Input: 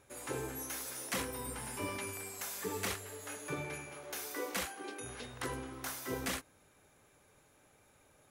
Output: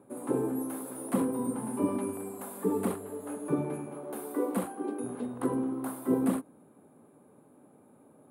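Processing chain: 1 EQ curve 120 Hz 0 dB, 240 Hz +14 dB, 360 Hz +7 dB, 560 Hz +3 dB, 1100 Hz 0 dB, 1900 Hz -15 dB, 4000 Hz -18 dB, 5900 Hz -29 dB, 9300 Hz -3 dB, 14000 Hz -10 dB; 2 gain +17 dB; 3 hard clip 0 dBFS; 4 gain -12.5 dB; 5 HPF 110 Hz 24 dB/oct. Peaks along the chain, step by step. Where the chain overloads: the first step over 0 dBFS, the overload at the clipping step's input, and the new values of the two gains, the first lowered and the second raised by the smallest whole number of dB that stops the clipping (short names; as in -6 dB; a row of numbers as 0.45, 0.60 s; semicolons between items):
-19.5, -2.5, -2.5, -15.0, -15.0 dBFS; no overload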